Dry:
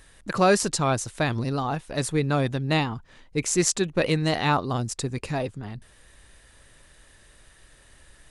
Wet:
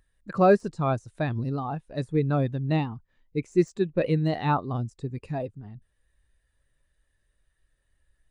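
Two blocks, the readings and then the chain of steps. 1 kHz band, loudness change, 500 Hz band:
−2.5 dB, −2.0 dB, 0.0 dB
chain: de-essing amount 70%
every bin expanded away from the loudest bin 1.5 to 1

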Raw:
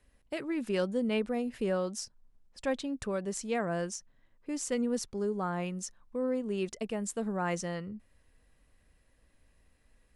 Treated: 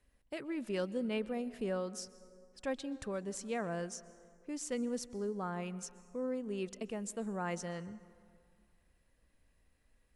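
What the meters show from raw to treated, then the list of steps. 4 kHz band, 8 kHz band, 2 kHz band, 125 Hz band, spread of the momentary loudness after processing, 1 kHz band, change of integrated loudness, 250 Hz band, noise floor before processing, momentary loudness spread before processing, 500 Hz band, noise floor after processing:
−5.5 dB, −5.5 dB, −5.5 dB, −5.5 dB, 9 LU, −5.5 dB, −5.5 dB, −5.5 dB, −68 dBFS, 9 LU, −5.5 dB, −72 dBFS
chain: dense smooth reverb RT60 2.2 s, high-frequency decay 0.5×, pre-delay 110 ms, DRR 17.5 dB
level −5.5 dB

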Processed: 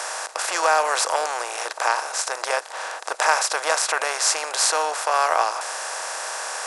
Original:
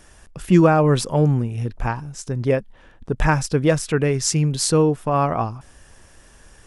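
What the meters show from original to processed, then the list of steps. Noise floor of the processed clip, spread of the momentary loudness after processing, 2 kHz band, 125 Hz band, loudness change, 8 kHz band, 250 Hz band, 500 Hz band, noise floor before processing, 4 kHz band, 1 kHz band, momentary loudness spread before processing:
−36 dBFS, 9 LU, +6.0 dB, below −40 dB, −2.5 dB, +5.0 dB, −28.5 dB, −6.0 dB, −50 dBFS, +5.5 dB, +4.0 dB, 12 LU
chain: compressor on every frequency bin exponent 0.4
inverse Chebyshev high-pass filter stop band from 200 Hz, stop band 60 dB
level −1 dB

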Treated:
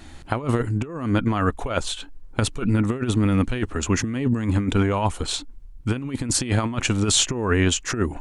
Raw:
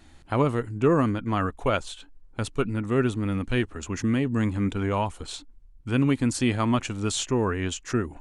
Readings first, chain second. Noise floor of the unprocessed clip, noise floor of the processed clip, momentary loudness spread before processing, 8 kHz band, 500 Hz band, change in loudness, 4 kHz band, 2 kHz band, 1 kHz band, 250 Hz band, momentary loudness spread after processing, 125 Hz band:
−52 dBFS, −41 dBFS, 9 LU, +10.0 dB, 0.0 dB, +3.0 dB, +8.5 dB, +4.0 dB, +1.5 dB, +2.0 dB, 8 LU, +4.0 dB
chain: compressor whose output falls as the input rises −27 dBFS, ratio −0.5
level +6.5 dB

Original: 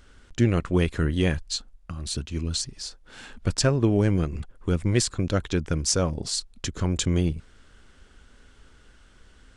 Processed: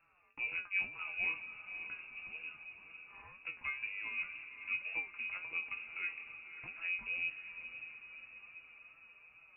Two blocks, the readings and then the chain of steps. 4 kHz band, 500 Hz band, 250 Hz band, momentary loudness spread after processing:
−22.0 dB, −35.0 dB, −39.5 dB, 17 LU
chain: high-pass filter 90 Hz
downward compressor 1.5 to 1, threshold −38 dBFS, peak gain reduction 8 dB
tuned comb filter 180 Hz, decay 0.26 s, harmonics all, mix 90%
tape wow and flutter 94 cents
voice inversion scrambler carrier 2,700 Hz
on a send: feedback delay with all-pass diffusion 566 ms, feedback 59%, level −9.5 dB
on the sum: level −1 dB

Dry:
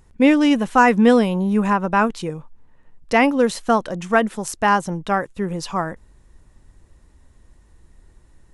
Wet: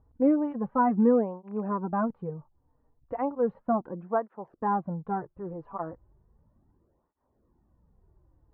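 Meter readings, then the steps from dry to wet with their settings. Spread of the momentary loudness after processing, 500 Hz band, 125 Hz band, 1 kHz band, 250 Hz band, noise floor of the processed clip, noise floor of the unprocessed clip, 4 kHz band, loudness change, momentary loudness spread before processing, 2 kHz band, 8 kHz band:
16 LU, −9.0 dB, −10.5 dB, −10.5 dB, −9.5 dB, −74 dBFS, −54 dBFS, below −40 dB, −10.0 dB, 12 LU, −22.5 dB, below −40 dB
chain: loose part that buzzes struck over −20 dBFS, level −19 dBFS
low-pass filter 1,100 Hz 24 dB per octave
through-zero flanger with one copy inverted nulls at 0.35 Hz, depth 5.7 ms
level −6.5 dB

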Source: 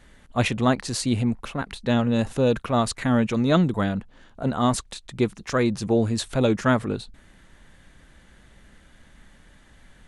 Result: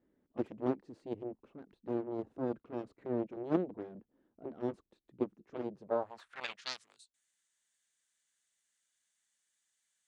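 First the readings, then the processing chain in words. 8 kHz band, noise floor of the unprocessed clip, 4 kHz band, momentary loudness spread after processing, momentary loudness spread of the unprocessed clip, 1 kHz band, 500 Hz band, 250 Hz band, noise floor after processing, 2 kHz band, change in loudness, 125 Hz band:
−26.5 dB, −54 dBFS, −17.0 dB, 14 LU, 10 LU, −17.5 dB, −13.0 dB, −16.5 dB, −82 dBFS, −19.5 dB, −15.5 dB, −24.0 dB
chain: harmonic generator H 3 −11 dB, 5 −42 dB, 7 −24 dB, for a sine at −6 dBFS
band-pass filter sweep 330 Hz → 7,500 Hz, 0:05.71–0:06.90
level +2 dB

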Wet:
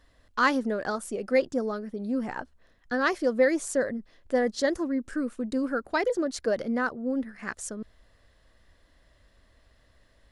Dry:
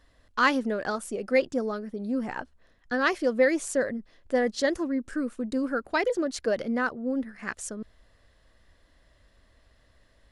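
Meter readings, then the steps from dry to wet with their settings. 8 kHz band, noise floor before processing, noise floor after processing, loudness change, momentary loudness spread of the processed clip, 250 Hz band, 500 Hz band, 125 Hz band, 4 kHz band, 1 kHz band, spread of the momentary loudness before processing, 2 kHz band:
0.0 dB, −63 dBFS, −63 dBFS, −0.5 dB, 12 LU, 0.0 dB, 0.0 dB, can't be measured, −2.0 dB, −0.5 dB, 12 LU, −1.5 dB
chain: dynamic equaliser 2,700 Hz, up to −5 dB, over −47 dBFS, Q 1.8

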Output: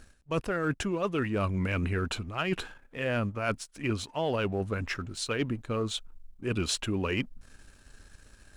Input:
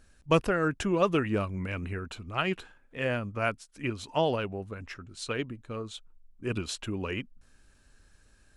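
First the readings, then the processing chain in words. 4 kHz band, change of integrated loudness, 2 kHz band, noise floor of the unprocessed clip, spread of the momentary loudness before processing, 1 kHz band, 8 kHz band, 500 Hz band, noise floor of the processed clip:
+2.5 dB, −0.5 dB, 0.0 dB, −62 dBFS, 14 LU, −2.5 dB, +5.0 dB, −1.5 dB, −59 dBFS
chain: reversed playback
downward compressor 20 to 1, threshold −34 dBFS, peak gain reduction 17.5 dB
reversed playback
leveller curve on the samples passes 1
level +5 dB

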